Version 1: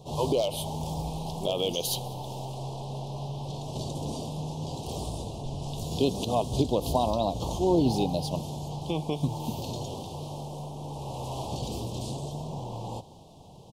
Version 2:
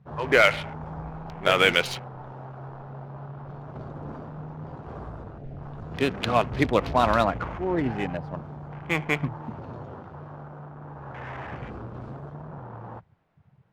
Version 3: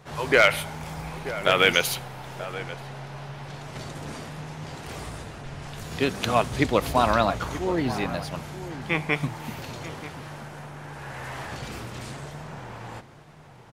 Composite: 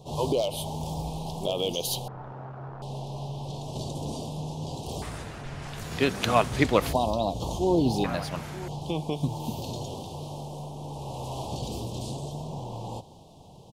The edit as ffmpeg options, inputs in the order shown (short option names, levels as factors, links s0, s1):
-filter_complex "[2:a]asplit=2[s0][s1];[0:a]asplit=4[s2][s3][s4][s5];[s2]atrim=end=2.082[s6];[1:a]atrim=start=2.078:end=2.822[s7];[s3]atrim=start=2.818:end=5.022[s8];[s0]atrim=start=5.018:end=6.932[s9];[s4]atrim=start=6.928:end=8.042[s10];[s1]atrim=start=8.038:end=8.682[s11];[s5]atrim=start=8.678[s12];[s6][s7]acrossfade=d=0.004:c1=hsin:c2=hsin[s13];[s13][s8]acrossfade=d=0.004:c1=hsin:c2=hsin[s14];[s14][s9]acrossfade=d=0.004:c1=hsin:c2=hsin[s15];[s15][s10]acrossfade=d=0.004:c1=hsin:c2=hsin[s16];[s16][s11]acrossfade=d=0.004:c1=hsin:c2=hsin[s17];[s17][s12]acrossfade=d=0.004:c1=hsin:c2=hsin"